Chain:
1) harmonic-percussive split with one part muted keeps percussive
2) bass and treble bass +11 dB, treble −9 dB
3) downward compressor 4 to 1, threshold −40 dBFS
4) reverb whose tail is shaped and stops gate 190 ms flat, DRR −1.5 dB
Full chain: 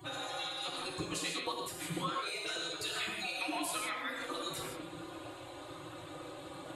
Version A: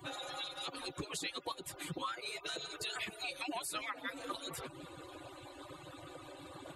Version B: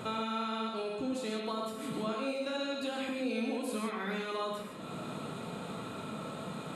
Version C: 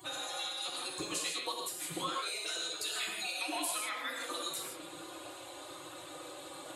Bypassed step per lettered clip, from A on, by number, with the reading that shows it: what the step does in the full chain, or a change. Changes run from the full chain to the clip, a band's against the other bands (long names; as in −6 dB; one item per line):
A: 4, change in integrated loudness −4.0 LU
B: 1, 8 kHz band −10.5 dB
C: 2, 125 Hz band −8.0 dB